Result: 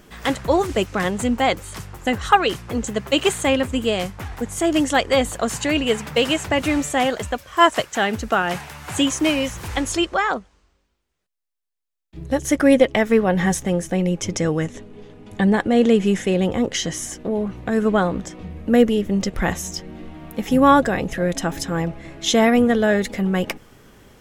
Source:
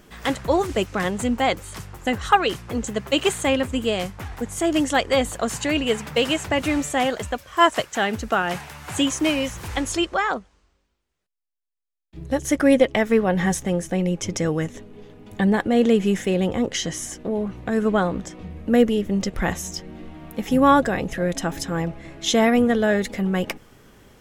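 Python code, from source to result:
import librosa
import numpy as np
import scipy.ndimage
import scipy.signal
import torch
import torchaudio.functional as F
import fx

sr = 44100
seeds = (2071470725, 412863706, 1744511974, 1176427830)

y = fx.lowpass(x, sr, hz=11000.0, slope=24, at=(14.35, 16.45))
y = F.gain(torch.from_numpy(y), 2.0).numpy()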